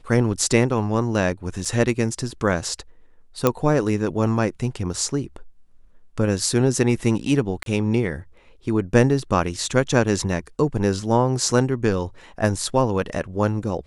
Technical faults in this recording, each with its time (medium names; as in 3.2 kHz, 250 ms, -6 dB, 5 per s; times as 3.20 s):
1.65–1.66 s: dropout 5.2 ms
3.47 s: pop -4 dBFS
7.63–7.66 s: dropout 32 ms